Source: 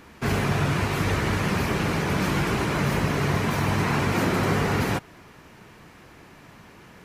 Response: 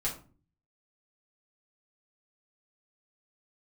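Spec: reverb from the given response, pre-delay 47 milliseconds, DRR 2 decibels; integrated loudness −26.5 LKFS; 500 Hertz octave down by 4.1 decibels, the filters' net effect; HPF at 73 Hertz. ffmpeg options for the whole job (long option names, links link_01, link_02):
-filter_complex "[0:a]highpass=73,equalizer=frequency=500:width_type=o:gain=-5.5,asplit=2[link_01][link_02];[1:a]atrim=start_sample=2205,adelay=47[link_03];[link_02][link_03]afir=irnorm=-1:irlink=0,volume=-6.5dB[link_04];[link_01][link_04]amix=inputs=2:normalize=0,volume=-5dB"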